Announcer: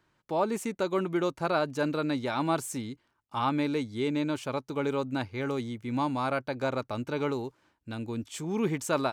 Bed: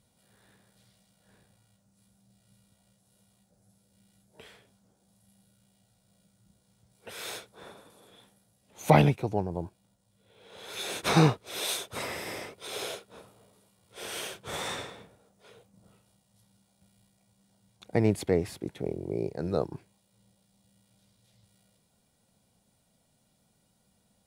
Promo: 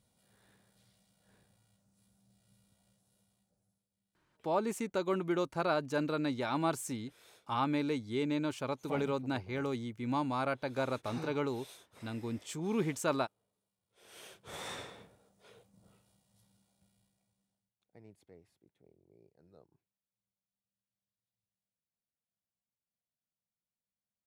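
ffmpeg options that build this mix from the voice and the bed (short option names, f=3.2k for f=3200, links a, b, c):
-filter_complex "[0:a]adelay=4150,volume=-4dB[a];[1:a]volume=13dB,afade=t=out:st=2.9:d=0.98:silence=0.133352,afade=t=in:st=14.04:d=1:silence=0.125893,afade=t=out:st=16.42:d=1.31:silence=0.0398107[b];[a][b]amix=inputs=2:normalize=0"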